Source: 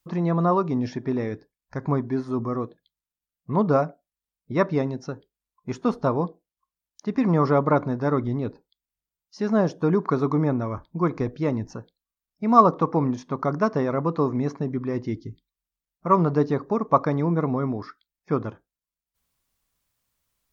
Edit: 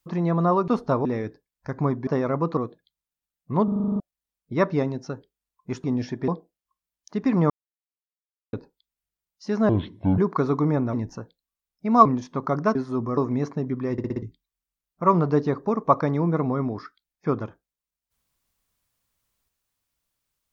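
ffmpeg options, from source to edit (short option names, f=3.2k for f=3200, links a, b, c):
-filter_complex "[0:a]asplit=29[a][b][c][d][e][f][g][h][i][j][k][l][m][n][o][p][q][r][s][t][u][v][w][x][y][z][aa][ab][ac];[a]atrim=end=0.682[ad];[b]atrim=start=5.828:end=6.202[ae];[c]atrim=start=1.118:end=2.142[af];[d]atrim=start=13.708:end=14.212[ag];[e]atrim=start=2.558:end=3.672[ah];[f]atrim=start=3.628:end=3.672[ai];[g]atrim=start=3.628:end=3.672[aj];[h]atrim=start=3.628:end=3.672[ak];[i]atrim=start=3.628:end=3.672[al];[j]atrim=start=3.628:end=3.672[am];[k]atrim=start=3.628:end=3.672[an];[l]atrim=start=3.628:end=3.672[ao];[m]atrim=start=3.628:end=3.672[ap];[n]atrim=start=3.988:end=5.832[aq];[o]atrim=start=0.678:end=1.122[ar];[p]atrim=start=6.198:end=7.42,asetpts=PTS-STARTPTS,afade=t=out:st=1.218:d=0.004:c=hsin[as];[q]atrim=start=7.42:end=8.45,asetpts=PTS-STARTPTS,volume=0[at];[r]atrim=start=8.45:end=9.614,asetpts=PTS-STARTPTS,afade=t=in:d=0.004:c=hsin[au];[s]atrim=start=9.61:end=9.91,asetpts=PTS-STARTPTS,asetrate=26901,aresample=44100[av];[t]atrim=start=9.906:end=10.662[aw];[u]atrim=start=11.508:end=12.632[ax];[v]atrim=start=13.008:end=13.712[ay];[w]atrim=start=2.138:end=2.562[az];[x]atrim=start=14.208:end=15.022[ba];[y]atrim=start=14.958:end=15.022[bb];[z]atrim=start=14.958:end=15.022[bc];[aa]atrim=start=14.958:end=15.022[bd];[ab]atrim=start=14.958:end=15.022[be];[ac]atrim=start=15.258[bf];[ad][ae]acrossfade=d=0.004:c1=hsin:c2=hsin[bg];[bg][af]acrossfade=d=0.004:c1=hsin:c2=hsin[bh];[bh][ag]acrossfade=d=0.004:c1=hsin:c2=hsin[bi];[bi][ah]acrossfade=d=0.004:c1=hsin:c2=hsin[bj];[bj][ai]acrossfade=d=0.004:c1=hsin:c2=hsin[bk];[bk][aj]acrossfade=d=0.004:c1=hsin:c2=hsin[bl];[bl][ak]acrossfade=d=0.004:c1=hsin:c2=hsin[bm];[bm][al]acrossfade=d=0.004:c1=hsin:c2=hsin[bn];[bn][am]acrossfade=d=0.004:c1=hsin:c2=hsin[bo];[bo][an]acrossfade=d=0.004:c1=hsin:c2=hsin[bp];[bp][ao]acrossfade=d=0.004:c1=hsin:c2=hsin[bq];[bq][ap]acrossfade=d=0.004:c1=hsin:c2=hsin[br];[br][aq]acrossfade=d=0.004:c1=hsin:c2=hsin[bs];[bs][ar]acrossfade=d=0.004:c1=hsin:c2=hsin[bt];[as][at][au]concat=n=3:v=0:a=1[bu];[bt][bu]acrossfade=d=0.004:c1=hsin:c2=hsin[bv];[bv][av]acrossfade=d=0.004:c1=hsin:c2=hsin[bw];[bw][aw]acrossfade=d=0.004:c1=hsin:c2=hsin[bx];[bx][ax]acrossfade=d=0.004:c1=hsin:c2=hsin[by];[by][ay]acrossfade=d=0.004:c1=hsin:c2=hsin[bz];[bz][az]acrossfade=d=0.004:c1=hsin:c2=hsin[ca];[ca][ba]acrossfade=d=0.004:c1=hsin:c2=hsin[cb];[cb][bb]acrossfade=d=0.004:c1=hsin:c2=hsin[cc];[cc][bc]acrossfade=d=0.004:c1=hsin:c2=hsin[cd];[cd][bd]acrossfade=d=0.004:c1=hsin:c2=hsin[ce];[ce][be]acrossfade=d=0.004:c1=hsin:c2=hsin[cf];[cf][bf]acrossfade=d=0.004:c1=hsin:c2=hsin"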